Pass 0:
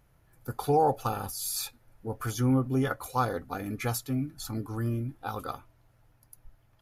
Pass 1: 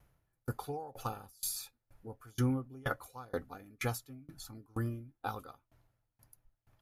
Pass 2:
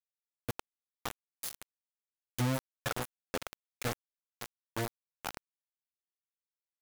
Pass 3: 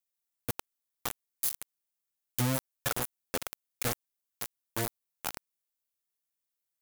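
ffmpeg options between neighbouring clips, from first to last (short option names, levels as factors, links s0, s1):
-af "aeval=exprs='val(0)*pow(10,-29*if(lt(mod(2.1*n/s,1),2*abs(2.1)/1000),1-mod(2.1*n/s,1)/(2*abs(2.1)/1000),(mod(2.1*n/s,1)-2*abs(2.1)/1000)/(1-2*abs(2.1)/1000))/20)':c=same"
-af "aecho=1:1:557|1114|1671|2228:0.473|0.137|0.0398|0.0115,acrusher=bits=4:mix=0:aa=0.000001,volume=0.841"
-af "highshelf=f=7300:g=11.5,volume=1.12"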